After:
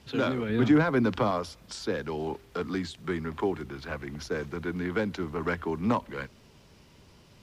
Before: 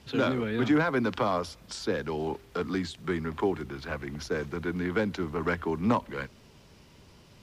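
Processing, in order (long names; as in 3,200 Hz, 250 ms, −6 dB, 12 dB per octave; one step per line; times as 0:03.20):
0:00.49–0:01.31: low-shelf EQ 370 Hz +6.5 dB
level −1 dB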